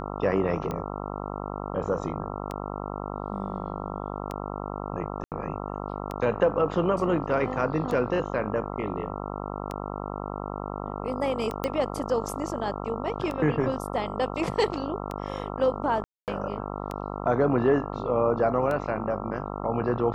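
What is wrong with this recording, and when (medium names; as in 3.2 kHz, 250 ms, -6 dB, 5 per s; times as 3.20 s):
buzz 50 Hz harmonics 27 -34 dBFS
tick 33 1/3 rpm -19 dBFS
5.24–5.32 s: dropout 78 ms
11.64 s: pop -13 dBFS
16.04–16.28 s: dropout 238 ms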